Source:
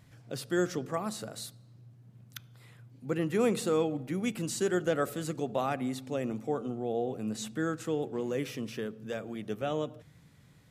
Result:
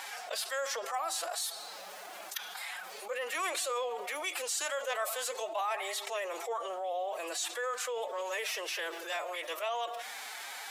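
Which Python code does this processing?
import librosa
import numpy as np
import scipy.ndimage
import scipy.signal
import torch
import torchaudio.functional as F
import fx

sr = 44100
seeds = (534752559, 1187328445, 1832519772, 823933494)

y = scipy.signal.sosfilt(scipy.signal.butter(4, 640.0, 'highpass', fs=sr, output='sos'), x)
y = fx.pitch_keep_formants(y, sr, semitones=7.5)
y = fx.env_flatten(y, sr, amount_pct=70)
y = F.gain(torch.from_numpy(y), -1.0).numpy()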